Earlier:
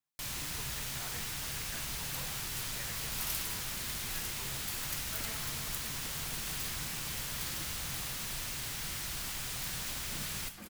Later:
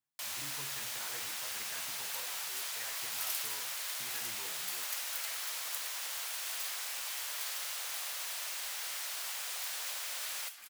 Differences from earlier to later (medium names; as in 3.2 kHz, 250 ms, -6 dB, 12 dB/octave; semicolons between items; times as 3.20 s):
first sound: add steep high-pass 510 Hz 36 dB/octave; second sound: add high-pass 1.5 kHz